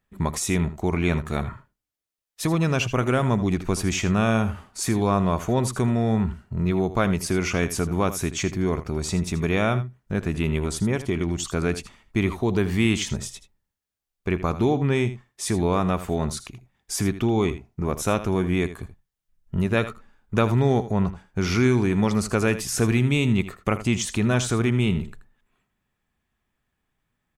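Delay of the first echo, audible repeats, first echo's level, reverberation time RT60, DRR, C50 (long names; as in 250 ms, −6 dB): 80 ms, 1, −13.5 dB, no reverb audible, no reverb audible, no reverb audible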